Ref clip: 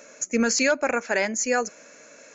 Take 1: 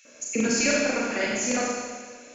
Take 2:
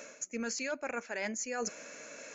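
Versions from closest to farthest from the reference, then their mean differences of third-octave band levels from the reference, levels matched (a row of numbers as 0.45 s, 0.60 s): 2, 1; 5.5 dB, 8.5 dB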